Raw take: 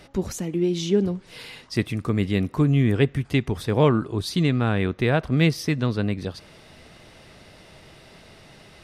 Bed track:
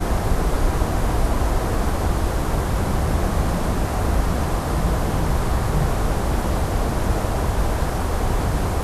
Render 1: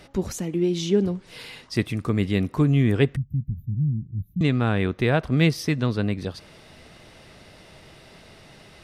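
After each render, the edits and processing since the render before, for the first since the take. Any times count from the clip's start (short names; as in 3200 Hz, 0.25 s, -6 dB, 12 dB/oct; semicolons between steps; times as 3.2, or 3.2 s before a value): 3.16–4.41 inverse Chebyshev band-stop 450–9100 Hz, stop band 50 dB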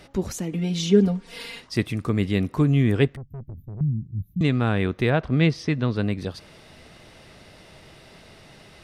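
0.52–1.6 comb 4.3 ms, depth 97%; 3.07–3.81 tube stage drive 33 dB, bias 0.7; 5.1–5.96 air absorption 100 m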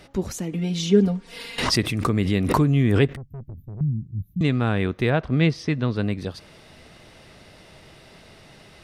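1.58–3.27 backwards sustainer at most 37 dB/s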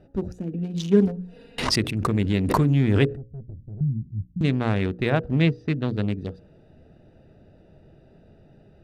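Wiener smoothing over 41 samples; notches 60/120/180/240/300/360/420/480/540 Hz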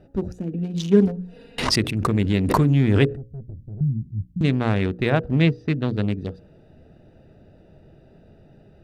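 gain +2 dB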